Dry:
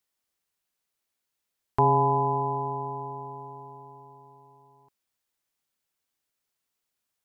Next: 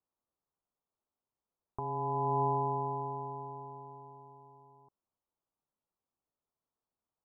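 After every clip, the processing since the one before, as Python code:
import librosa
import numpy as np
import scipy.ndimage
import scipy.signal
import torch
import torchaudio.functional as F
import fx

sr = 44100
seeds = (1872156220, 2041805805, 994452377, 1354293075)

y = fx.over_compress(x, sr, threshold_db=-27.0, ratio=-1.0)
y = scipy.signal.sosfilt(scipy.signal.butter(6, 1200.0, 'lowpass', fs=sr, output='sos'), y)
y = F.gain(torch.from_numpy(y), -4.5).numpy()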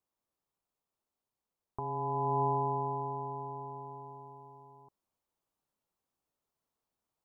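y = fx.rider(x, sr, range_db=4, speed_s=2.0)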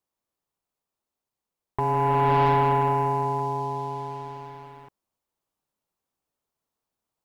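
y = fx.leveller(x, sr, passes=2)
y = F.gain(torch.from_numpy(y), 6.0).numpy()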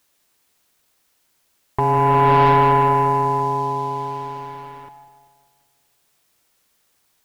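y = fx.quant_dither(x, sr, seeds[0], bits=12, dither='triangular')
y = fx.echo_split(y, sr, split_hz=710.0, low_ms=194, high_ms=149, feedback_pct=52, wet_db=-12.0)
y = F.gain(torch.from_numpy(y), 6.5).numpy()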